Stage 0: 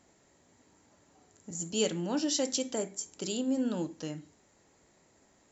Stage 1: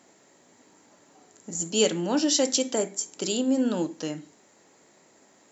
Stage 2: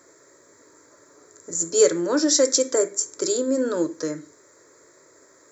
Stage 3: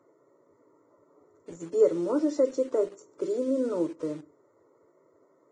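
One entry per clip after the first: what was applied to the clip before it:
HPF 200 Hz 12 dB/oct; gain +7.5 dB
fixed phaser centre 780 Hz, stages 6; gain +7.5 dB
polynomial smoothing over 65 samples; in parallel at -11 dB: requantised 6-bit, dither none; on the sum: gain -6.5 dB; Vorbis 16 kbps 22050 Hz

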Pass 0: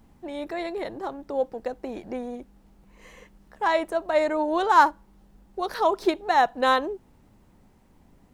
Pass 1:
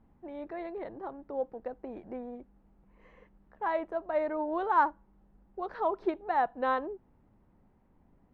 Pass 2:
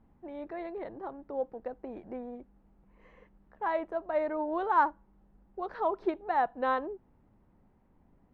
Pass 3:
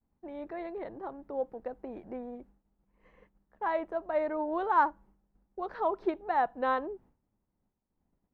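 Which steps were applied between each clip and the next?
LPF 1700 Hz 12 dB/oct; gain -7.5 dB
nothing audible
expander -53 dBFS

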